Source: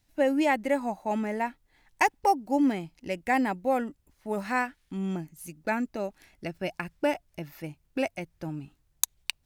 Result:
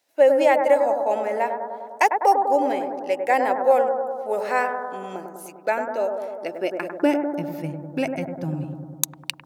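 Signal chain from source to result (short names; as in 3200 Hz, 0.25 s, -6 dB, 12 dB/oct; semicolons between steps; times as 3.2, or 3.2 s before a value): high-pass sweep 510 Hz -> 130 Hz, 6.32–7.93; analogue delay 0.1 s, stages 1024, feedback 72%, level -5.5 dB; gain +2.5 dB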